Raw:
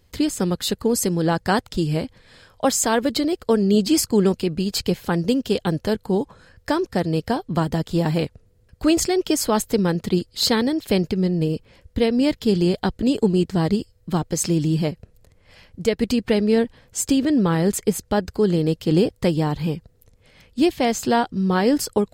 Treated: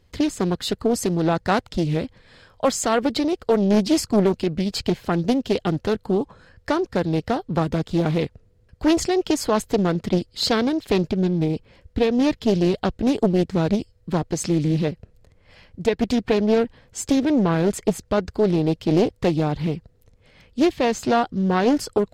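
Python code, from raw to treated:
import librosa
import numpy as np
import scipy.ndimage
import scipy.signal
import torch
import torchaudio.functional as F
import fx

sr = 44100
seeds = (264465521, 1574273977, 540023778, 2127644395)

y = fx.high_shelf(x, sr, hz=8100.0, db=-11.5)
y = fx.doppler_dist(y, sr, depth_ms=0.51)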